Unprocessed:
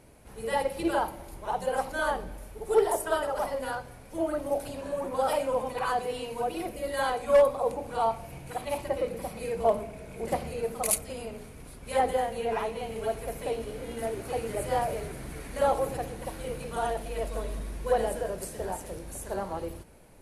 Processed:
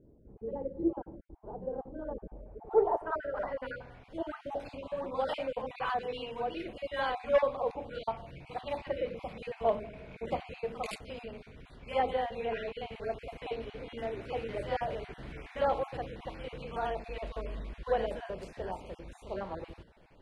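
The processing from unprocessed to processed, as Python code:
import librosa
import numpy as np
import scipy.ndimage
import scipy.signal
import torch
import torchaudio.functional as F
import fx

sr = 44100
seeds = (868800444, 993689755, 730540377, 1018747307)

y = fx.spec_dropout(x, sr, seeds[0], share_pct=22)
y = fx.filter_sweep_lowpass(y, sr, from_hz=370.0, to_hz=3200.0, start_s=2.01, end_s=4.04, q=1.5)
y = y * librosa.db_to_amplitude(-4.5)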